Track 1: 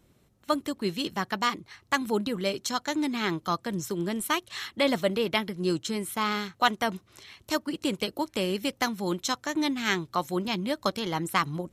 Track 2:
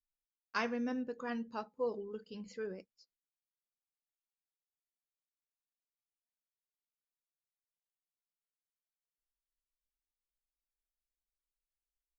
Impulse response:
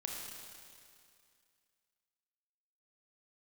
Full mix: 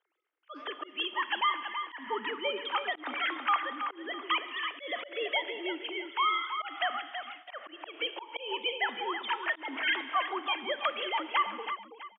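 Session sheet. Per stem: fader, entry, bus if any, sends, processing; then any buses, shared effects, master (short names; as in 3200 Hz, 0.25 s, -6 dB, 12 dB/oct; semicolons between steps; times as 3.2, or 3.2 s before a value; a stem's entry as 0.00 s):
+1.0 dB, 0.00 s, send -6 dB, echo send -6 dB, sine-wave speech; high shelf 2400 Hz +6.5 dB; limiter -21.5 dBFS, peak gain reduction 11 dB
-8.0 dB, 0.00 s, no send, no echo send, auto duck -17 dB, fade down 1.35 s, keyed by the first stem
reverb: on, RT60 2.3 s, pre-delay 26 ms
echo: feedback echo 0.327 s, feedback 34%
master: gate -47 dBFS, range -9 dB; auto swell 0.181 s; BPF 780–4100 Hz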